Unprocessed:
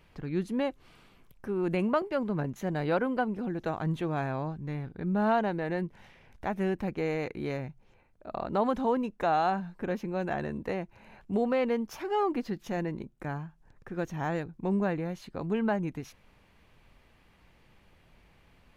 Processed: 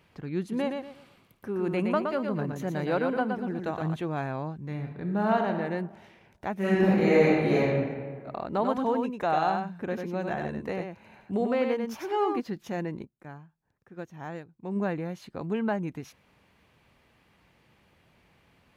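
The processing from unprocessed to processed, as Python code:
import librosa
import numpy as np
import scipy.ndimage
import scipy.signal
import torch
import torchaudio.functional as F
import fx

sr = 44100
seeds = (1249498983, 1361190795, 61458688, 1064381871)

y = fx.echo_feedback(x, sr, ms=118, feedback_pct=30, wet_db=-5.0, at=(0.51, 3.94), fade=0.02)
y = fx.reverb_throw(y, sr, start_s=4.57, length_s=1.0, rt60_s=1.2, drr_db=4.5)
y = fx.reverb_throw(y, sr, start_s=6.55, length_s=1.13, rt60_s=1.6, drr_db=-10.0)
y = fx.echo_single(y, sr, ms=96, db=-5.0, at=(8.46, 12.4))
y = fx.upward_expand(y, sr, threshold_db=-41.0, expansion=1.5, at=(13.04, 14.75), fade=0.02)
y = scipy.signal.sosfilt(scipy.signal.butter(2, 82.0, 'highpass', fs=sr, output='sos'), y)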